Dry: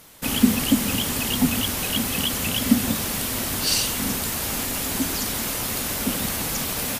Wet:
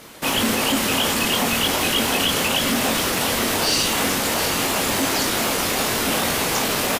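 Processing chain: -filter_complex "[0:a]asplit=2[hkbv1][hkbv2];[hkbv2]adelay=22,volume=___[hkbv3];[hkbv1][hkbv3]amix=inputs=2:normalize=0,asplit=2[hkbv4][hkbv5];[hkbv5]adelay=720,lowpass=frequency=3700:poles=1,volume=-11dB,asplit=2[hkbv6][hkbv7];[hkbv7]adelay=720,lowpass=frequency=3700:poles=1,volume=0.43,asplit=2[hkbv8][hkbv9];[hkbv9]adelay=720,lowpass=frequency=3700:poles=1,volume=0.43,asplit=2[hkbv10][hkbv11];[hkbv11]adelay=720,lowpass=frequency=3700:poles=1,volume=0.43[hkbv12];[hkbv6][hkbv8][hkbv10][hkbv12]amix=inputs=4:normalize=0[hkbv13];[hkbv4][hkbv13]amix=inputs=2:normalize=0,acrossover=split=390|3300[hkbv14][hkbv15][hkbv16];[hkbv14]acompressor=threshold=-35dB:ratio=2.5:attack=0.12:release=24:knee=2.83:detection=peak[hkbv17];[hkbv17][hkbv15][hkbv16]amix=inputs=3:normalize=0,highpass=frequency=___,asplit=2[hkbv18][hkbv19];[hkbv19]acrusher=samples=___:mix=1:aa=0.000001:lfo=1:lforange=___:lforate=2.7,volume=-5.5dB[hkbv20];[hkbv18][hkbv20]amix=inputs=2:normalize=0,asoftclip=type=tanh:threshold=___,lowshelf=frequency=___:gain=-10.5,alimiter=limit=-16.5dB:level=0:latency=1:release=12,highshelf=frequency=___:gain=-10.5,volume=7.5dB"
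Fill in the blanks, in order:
-3.5dB, 62, 37, 37, -11.5dB, 220, 7900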